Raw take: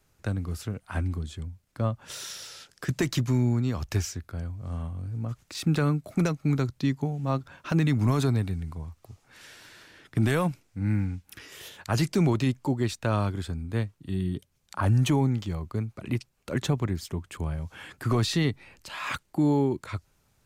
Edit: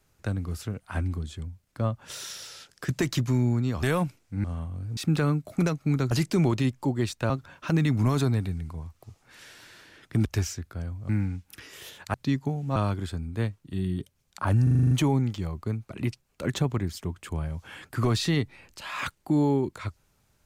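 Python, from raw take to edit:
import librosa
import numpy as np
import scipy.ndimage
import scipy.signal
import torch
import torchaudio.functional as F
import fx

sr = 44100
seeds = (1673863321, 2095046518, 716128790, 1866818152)

y = fx.edit(x, sr, fx.swap(start_s=3.83, length_s=0.84, other_s=10.27, other_length_s=0.61),
    fx.cut(start_s=5.2, length_s=0.36),
    fx.swap(start_s=6.7, length_s=0.62, other_s=11.93, other_length_s=1.19),
    fx.stutter(start_s=14.99, slice_s=0.04, count=8), tone=tone)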